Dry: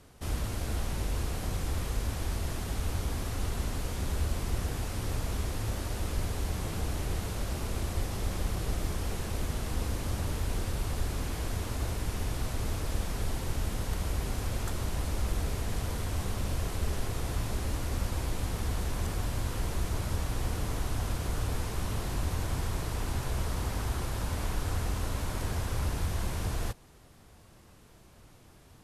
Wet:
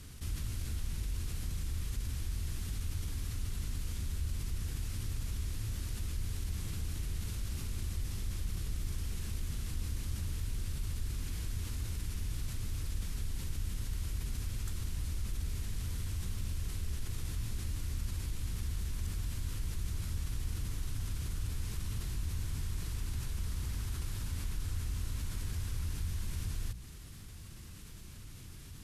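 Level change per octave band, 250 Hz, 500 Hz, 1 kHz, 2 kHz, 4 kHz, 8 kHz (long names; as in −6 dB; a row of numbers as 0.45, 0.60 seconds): −9.5, −17.0, −16.5, −9.5, −6.0, −5.0 decibels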